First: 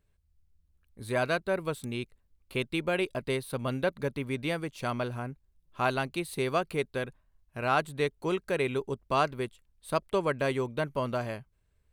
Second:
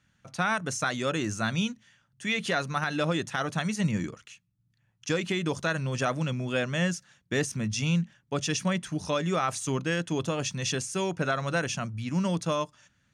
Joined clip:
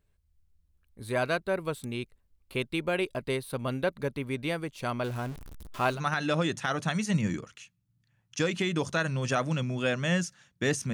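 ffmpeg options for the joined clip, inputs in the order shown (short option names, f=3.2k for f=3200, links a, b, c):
-filter_complex "[0:a]asettb=1/sr,asplit=3[a][b][c];[a]atrim=end=5.044[d];[b]atrim=start=5.04:end=6.01,asetpts=PTS-STARTPTS,afade=t=in:d=0.004:c=qsin,afade=t=out:st=0.966:d=0.004:c=qsin,aeval=exprs='val(0)+0.5*0.0126*sgn(val(0))':c=same[e];[c]atrim=start=6.006[f];[d][e]acrossfade=d=0.004:c1=hsin:c2=qsin[g];[g][f]acrossfade=d=0.004:c1=qsin:c2=hsin,apad=whole_dur=10.93,atrim=end=10.93,atrim=end=6.01,asetpts=PTS-STARTPTS[h];[1:a]atrim=start=2.59:end=7.63,asetpts=PTS-STARTPTS[i];[h][i]acrossfade=d=0.12:c1=tri:c2=tri"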